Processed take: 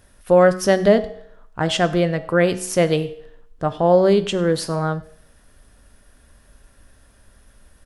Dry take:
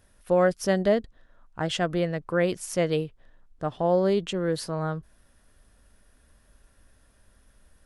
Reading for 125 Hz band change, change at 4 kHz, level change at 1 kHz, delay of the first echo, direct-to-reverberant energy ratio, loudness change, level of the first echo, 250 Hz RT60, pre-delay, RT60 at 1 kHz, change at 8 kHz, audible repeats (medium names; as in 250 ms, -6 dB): +7.0 dB, +8.0 dB, +8.0 dB, 99 ms, 11.0 dB, +7.5 dB, -22.5 dB, 0.65 s, 5 ms, 0.65 s, +8.0 dB, 1